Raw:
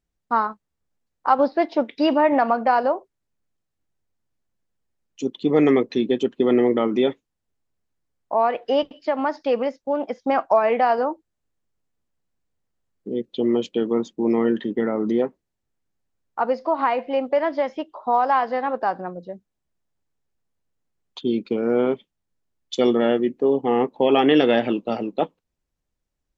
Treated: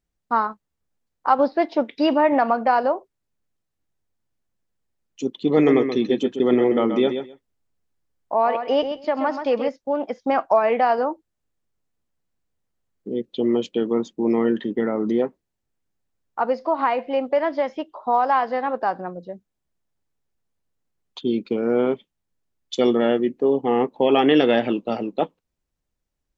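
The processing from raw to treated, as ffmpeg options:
-filter_complex "[0:a]asettb=1/sr,asplit=3[a][b][c];[a]atrim=end=5.334[d];[b]atrim=start=5.33:end=9.69,asetpts=PTS-STARTPTS,afade=t=in:d=0.004:c=qsin,afade=t=out:st=4.356:d=0.004:c=qsin,aecho=1:1:129|258:0.398|0.0597,atrim=end_sample=192276[e];[c]atrim=start=9.686[f];[d][e]acrossfade=d=0.004:c1=hsin:c2=qsin[g];[g][f]acrossfade=d=0.004:c1=qsin:c2=hsin"

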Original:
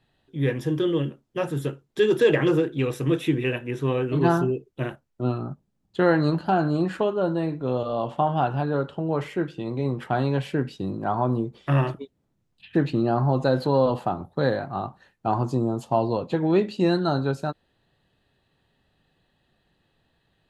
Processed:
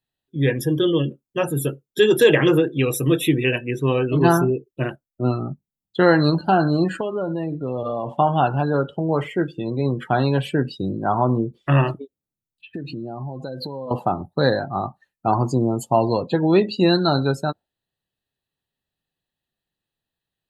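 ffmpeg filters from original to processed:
-filter_complex "[0:a]asettb=1/sr,asplit=3[a][b][c];[a]atrim=end=6.884[d];[b]atrim=start=6.88:end=8.17,asetpts=PTS-STARTPTS,afade=t=in:d=0.004:c=qsin,afade=t=out:st=1.286:d=0.004:c=qsin,acompressor=threshold=-25dB:ratio=5:attack=3.2:release=140:knee=1:detection=peak[e];[c]atrim=start=8.166[f];[d][e]acrossfade=d=0.004:c1=hsin:c2=qsin[g];[g][f]acrossfade=d=0.004:c1=qsin:c2=hsin,asettb=1/sr,asplit=3[h][i][j];[h]atrim=end=11.954[k];[i]atrim=start=11.95:end=13.91,asetpts=PTS-STARTPTS,afade=t=in:d=0.004:c=qsin,afade=t=out:st=1.956:d=0.004:c=qsin,acompressor=threshold=-32dB:ratio=6:attack=3.2:release=140:knee=1:detection=peak[l];[j]atrim=start=13.906[m];[k][l]acrossfade=d=0.004:c1=hsin:c2=qsin[n];[n][m]acrossfade=d=0.004:c1=qsin:c2=hsin,aemphasis=mode=production:type=75fm,afftdn=nr=24:nf=-37,volume=5dB"

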